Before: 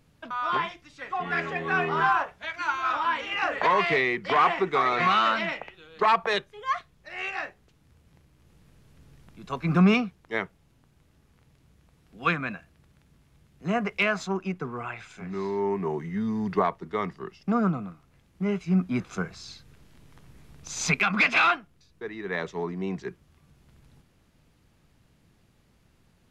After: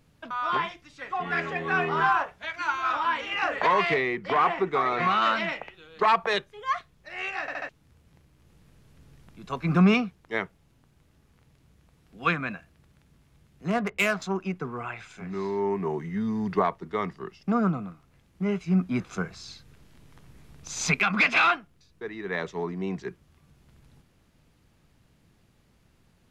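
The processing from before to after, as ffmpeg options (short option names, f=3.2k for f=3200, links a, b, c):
-filter_complex "[0:a]asettb=1/sr,asplit=3[a][b][c];[a]atrim=end=3.944[d];[b]atrim=start=3.94:end=5.22,asetpts=PTS-STARTPTS,afade=t=in:d=0.004:c=qsin,afade=t=out:st=1.276:d=0.004:c=qsin,equalizer=f=6.1k:w=0.3:g=-6[e];[c]atrim=start=5.216[f];[d][e]acrossfade=d=0.004:c1=hsin:c2=qsin[g];[g][f]acrossfade=d=0.004:c1=qsin:c2=hsin,asettb=1/sr,asplit=3[h][i][j];[h]atrim=end=13.704[k];[i]atrim=start=13.7:end=14.22,asetpts=PTS-STARTPTS,afade=t=in:d=0.004:c=qsin,afade=t=out:st=0.516:d=0.004:c=qsin,adynamicsmooth=sensitivity=5:basefreq=1.4k[l];[j]atrim=start=14.216[m];[k][l]acrossfade=d=0.004:c1=hsin:c2=qsin[n];[n][m]acrossfade=d=0.004:c1=qsin:c2=hsin,asplit=5[o][p][q][r][s];[o]atrim=end=7.482[t];[p]atrim=start=7.408:end=7.482[u];[q]atrim=start=7.408:end=7.482[v];[r]atrim=start=7.408:end=7.482[w];[s]atrim=start=7.688[x];[t][u]acrossfade=d=0.004:c1=hsin:c2=hsin[y];[y][v]acrossfade=d=0.004:c1=hsin:c2=hsin[z];[z][w]acrossfade=d=0.004:c1=hsin:c2=hsin[aa];[aa][x]acrossfade=d=0.004:c1=hsin:c2=hsin"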